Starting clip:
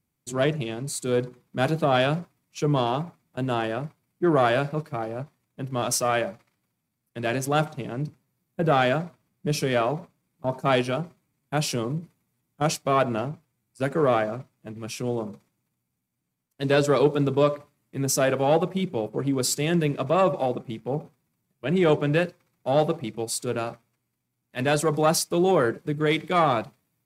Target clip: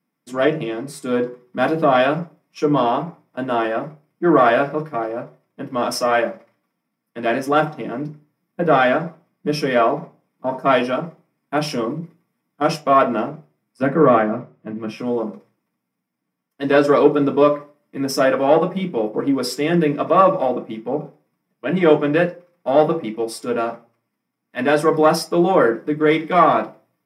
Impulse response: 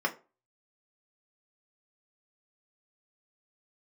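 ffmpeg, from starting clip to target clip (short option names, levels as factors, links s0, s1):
-filter_complex "[0:a]asettb=1/sr,asplit=3[s0][s1][s2];[s0]atrim=end=13.824[s3];[s1]atrim=start=13.82:end=14.99,asetpts=PTS-STARTPTS,afade=t=in:d=0.004:c=qsin,afade=t=out:st=1.166:d=0.004:c=qsin,bass=f=250:g=9,treble=f=4000:g=-10[s4];[s2]atrim=start=14.986[s5];[s3][s4]acrossfade=d=0.004:c1=hsin:c2=qsin[s6];[s6][s5]acrossfade=d=0.004:c1=qsin:c2=hsin[s7];[1:a]atrim=start_sample=2205[s8];[s7][s8]afir=irnorm=-1:irlink=0,volume=0.75"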